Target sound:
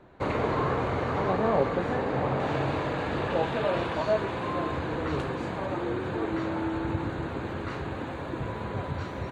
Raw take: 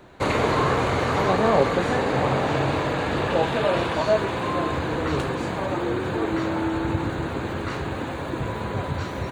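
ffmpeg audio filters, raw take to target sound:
ffmpeg -i in.wav -af "asetnsamples=nb_out_samples=441:pad=0,asendcmd='2.4 lowpass f 3600',lowpass=frequency=1700:poles=1,volume=-5dB" out.wav

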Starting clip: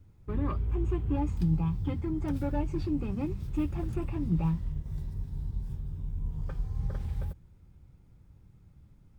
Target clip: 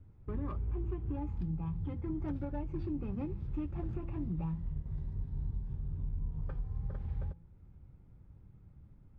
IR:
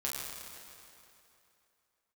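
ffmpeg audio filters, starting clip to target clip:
-af "bandreject=frequency=167.9:width_type=h:width=4,bandreject=frequency=335.8:width_type=h:width=4,bandreject=frequency=503.7:width_type=h:width=4,bandreject=frequency=671.6:width_type=h:width=4,bandreject=frequency=839.5:width_type=h:width=4,bandreject=frequency=1007.4:width_type=h:width=4,alimiter=level_in=4dB:limit=-24dB:level=0:latency=1:release=466,volume=-4dB,adynamicsmooth=sensitivity=5.5:basefreq=2300"

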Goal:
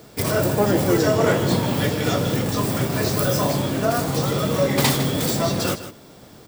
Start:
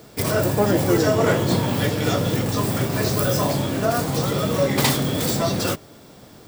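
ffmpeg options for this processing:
ffmpeg -i in.wav -af "aecho=1:1:155:0.237" out.wav

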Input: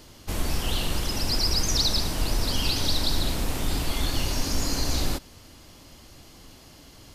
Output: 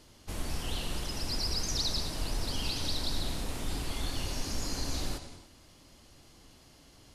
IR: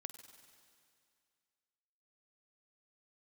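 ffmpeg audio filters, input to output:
-filter_complex "[1:a]atrim=start_sample=2205,atrim=end_sample=6615,asetrate=22491,aresample=44100[link_01];[0:a][link_01]afir=irnorm=-1:irlink=0,volume=-7dB"

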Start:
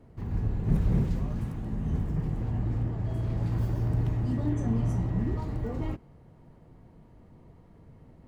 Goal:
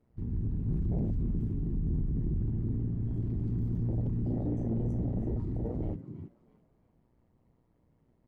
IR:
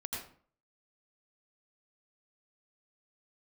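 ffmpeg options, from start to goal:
-filter_complex "[0:a]asettb=1/sr,asplit=3[link_01][link_02][link_03];[link_01]atrim=end=1.164[link_04];[link_02]atrim=start=1.16:end=2.51,asetpts=PTS-STARTPTS,afade=type=in:duration=0.004:curve=qsin,afade=type=out:start_time=1.346:duration=0.004:curve=qsin,lowshelf=frequency=64:gain=9.5[link_05];[link_03]atrim=start=2.506[link_06];[link_04][link_05]acrossfade=duration=0.004:curve1=hsin:curve2=qsin[link_07];[link_07][link_06]acrossfade=duration=0.004:curve1=qsin:curve2=hsin,tremolo=f=120:d=0.889,asplit=2[link_08][link_09];[link_09]asplit=4[link_10][link_11][link_12][link_13];[link_10]adelay=329,afreqshift=59,volume=-11.5dB[link_14];[link_11]adelay=658,afreqshift=118,volume=-20.1dB[link_15];[link_12]adelay=987,afreqshift=177,volume=-28.8dB[link_16];[link_13]adelay=1316,afreqshift=236,volume=-37.4dB[link_17];[link_14][link_15][link_16][link_17]amix=inputs=4:normalize=0[link_18];[link_08][link_18]amix=inputs=2:normalize=0,asoftclip=type=tanh:threshold=-29.5dB,afwtdn=0.0178,volume=4.5dB"

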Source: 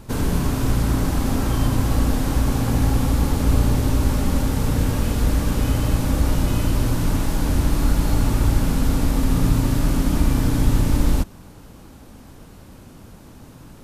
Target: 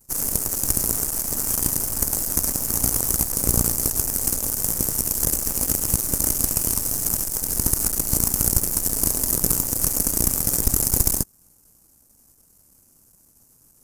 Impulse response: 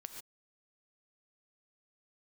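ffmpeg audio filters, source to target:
-af "aeval=exprs='clip(val(0),-1,0.119)':channel_layout=same,aeval=exprs='0.631*(cos(1*acos(clip(val(0)/0.631,-1,1)))-cos(1*PI/2))+0.0708*(cos(6*acos(clip(val(0)/0.631,-1,1)))-cos(6*PI/2))+0.1*(cos(7*acos(clip(val(0)/0.631,-1,1)))-cos(7*PI/2))':channel_layout=same,aexciter=amount=9.2:drive=7.6:freq=5400,volume=-3dB"

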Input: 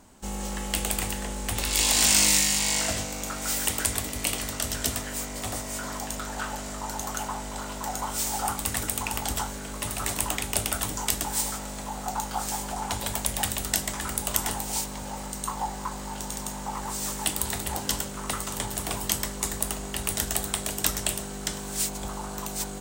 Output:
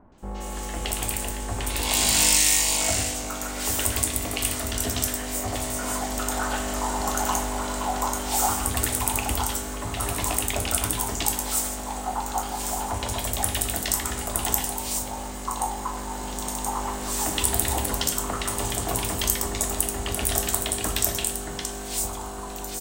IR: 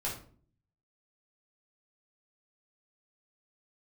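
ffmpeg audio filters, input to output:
-filter_complex "[0:a]acrossover=split=1600|5100[link_01][link_02][link_03];[link_02]adelay=120[link_04];[link_03]adelay=180[link_05];[link_01][link_04][link_05]amix=inputs=3:normalize=0,asplit=2[link_06][link_07];[1:a]atrim=start_sample=2205,asetrate=30870,aresample=44100[link_08];[link_07][link_08]afir=irnorm=-1:irlink=0,volume=-10.5dB[link_09];[link_06][link_09]amix=inputs=2:normalize=0,dynaudnorm=framelen=110:gausssize=31:maxgain=11.5dB,volume=-1dB"

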